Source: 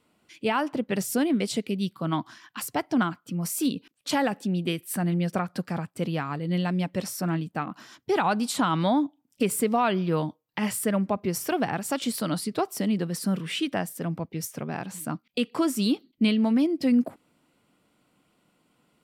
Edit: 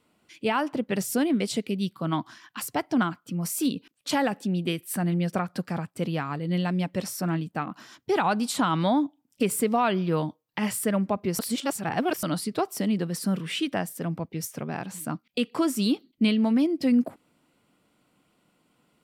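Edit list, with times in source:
11.39–12.23 s: reverse

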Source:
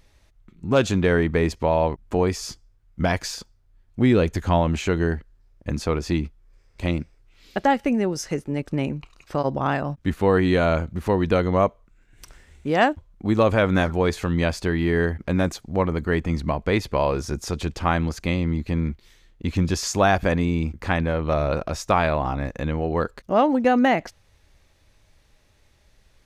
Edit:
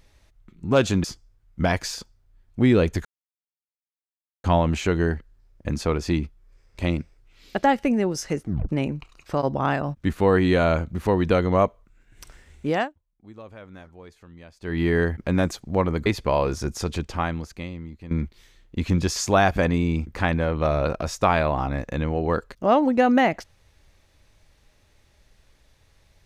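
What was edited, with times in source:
1.04–2.44 s: delete
4.45 s: insert silence 1.39 s
8.44 s: tape stop 0.26 s
12.70–14.82 s: dip -24 dB, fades 0.21 s
16.07–16.73 s: delete
17.57–18.78 s: fade out quadratic, to -15 dB

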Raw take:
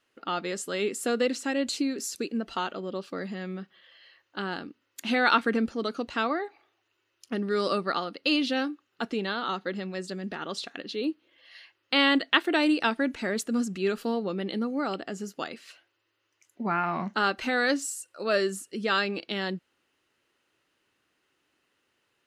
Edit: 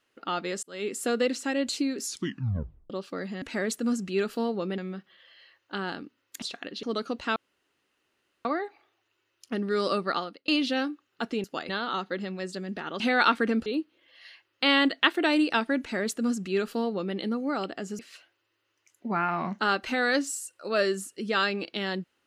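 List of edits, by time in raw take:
0.63–0.96 s: fade in
2.04 s: tape stop 0.86 s
5.06–5.72 s: swap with 10.55–10.96 s
6.25 s: insert room tone 1.09 s
7.98–8.28 s: fade out
13.10–14.46 s: copy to 3.42 s
15.29–15.54 s: move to 9.24 s

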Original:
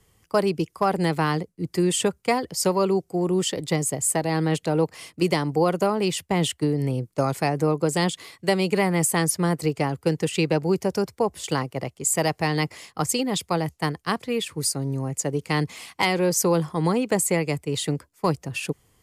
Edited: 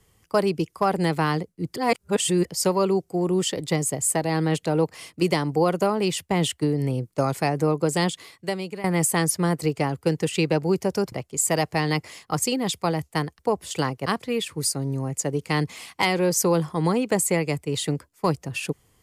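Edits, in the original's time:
1.76–2.45 s: reverse
8.02–8.84 s: fade out, to -16 dB
11.12–11.79 s: move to 14.06 s

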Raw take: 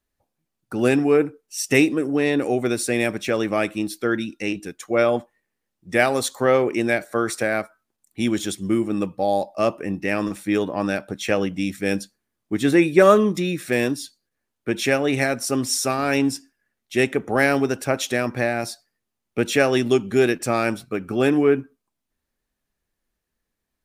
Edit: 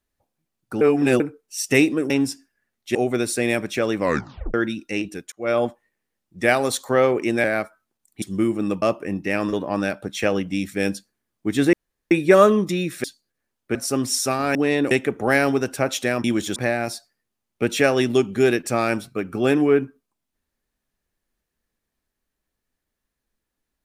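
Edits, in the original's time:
0.81–1.20 s: reverse
2.10–2.46 s: swap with 16.14–16.99 s
3.50 s: tape stop 0.55 s
4.83–5.11 s: fade in
6.95–7.43 s: delete
8.21–8.53 s: move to 18.32 s
9.13–9.60 s: delete
10.31–10.59 s: delete
12.79 s: insert room tone 0.38 s
13.72–14.01 s: delete
14.72–15.34 s: delete

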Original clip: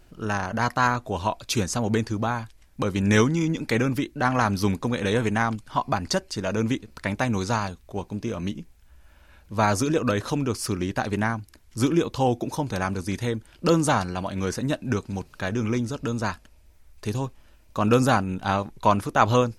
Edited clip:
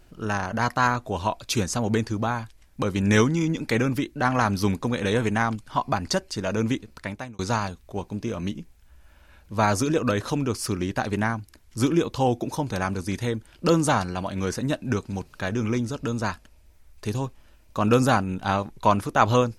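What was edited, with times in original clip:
6.84–7.39 s: fade out

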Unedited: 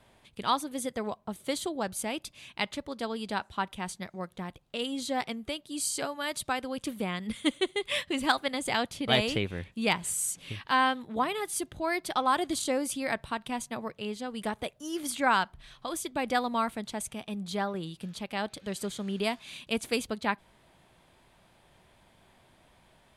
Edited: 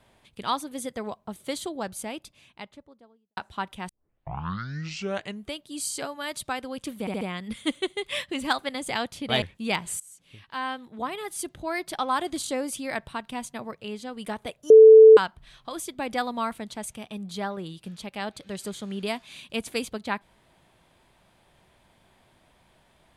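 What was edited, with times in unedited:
1.75–3.37 s: studio fade out
3.89 s: tape start 1.61 s
7.00 s: stutter 0.07 s, 4 plays
9.21–9.59 s: delete
10.17–11.69 s: fade in, from -22 dB
14.87–15.34 s: bleep 440 Hz -6.5 dBFS

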